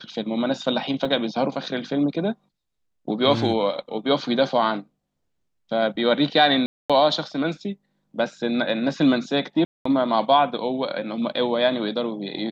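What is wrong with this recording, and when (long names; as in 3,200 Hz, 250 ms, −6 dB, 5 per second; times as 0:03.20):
0:01.05: drop-out 3.7 ms
0:06.66–0:06.90: drop-out 236 ms
0:09.65–0:09.85: drop-out 204 ms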